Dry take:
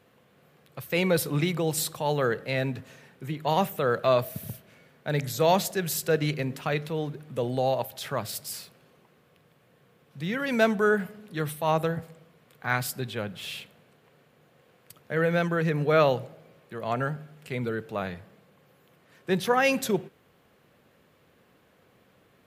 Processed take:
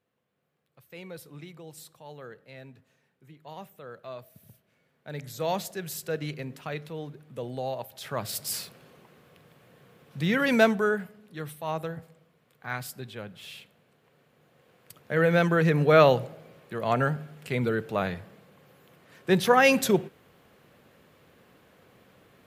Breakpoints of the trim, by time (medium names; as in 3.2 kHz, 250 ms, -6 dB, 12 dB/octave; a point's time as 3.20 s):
4.32 s -18.5 dB
5.48 s -7 dB
7.87 s -7 dB
8.54 s +5 dB
10.47 s +5 dB
11.10 s -7 dB
13.54 s -7 dB
15.48 s +3.5 dB